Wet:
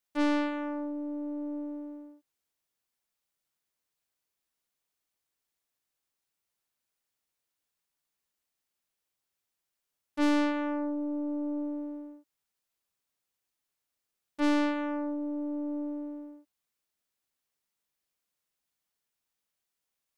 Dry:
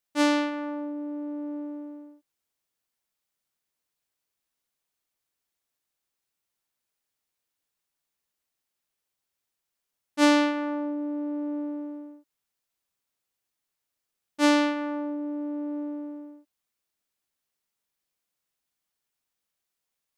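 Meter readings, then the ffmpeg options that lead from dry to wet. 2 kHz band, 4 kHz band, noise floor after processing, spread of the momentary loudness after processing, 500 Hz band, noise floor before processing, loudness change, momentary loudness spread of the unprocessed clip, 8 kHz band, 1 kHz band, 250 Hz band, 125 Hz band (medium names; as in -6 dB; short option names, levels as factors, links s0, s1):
-7.0 dB, -10.0 dB, under -85 dBFS, 16 LU, -5.0 dB, -84 dBFS, -4.5 dB, 18 LU, under -10 dB, -6.0 dB, -3.0 dB, no reading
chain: -filter_complex "[0:a]acrossover=split=2500[s0][s1];[s1]acompressor=threshold=0.00794:ratio=4:attack=1:release=60[s2];[s0][s2]amix=inputs=2:normalize=0,aeval=exprs='(tanh(12.6*val(0)+0.45)-tanh(0.45))/12.6':c=same"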